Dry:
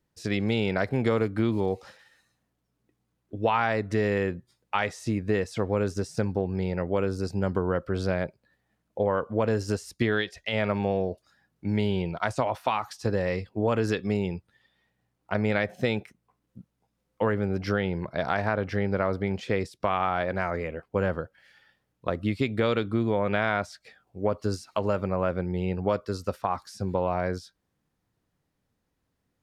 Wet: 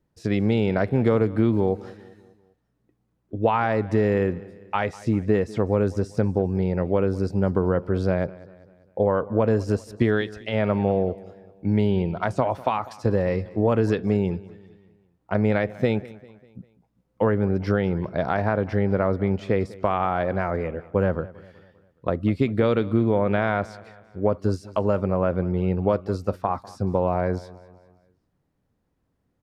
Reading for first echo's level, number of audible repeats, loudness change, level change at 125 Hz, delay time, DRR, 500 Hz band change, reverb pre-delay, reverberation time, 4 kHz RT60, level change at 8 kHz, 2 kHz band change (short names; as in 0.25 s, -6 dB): -20.0 dB, 3, +4.0 dB, +5.5 dB, 0.198 s, none, +4.5 dB, none, none, none, n/a, -1.0 dB